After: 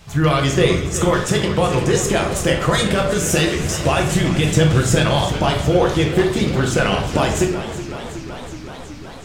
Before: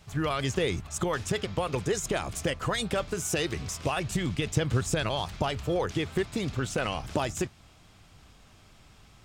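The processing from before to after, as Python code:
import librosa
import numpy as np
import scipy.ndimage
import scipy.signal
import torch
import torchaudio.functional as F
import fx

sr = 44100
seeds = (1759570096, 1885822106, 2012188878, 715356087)

y = fx.room_shoebox(x, sr, seeds[0], volume_m3=140.0, walls='mixed', distance_m=0.8)
y = fx.echo_warbled(y, sr, ms=374, feedback_pct=76, rate_hz=2.8, cents=106, wet_db=-13.0)
y = y * 10.0 ** (9.0 / 20.0)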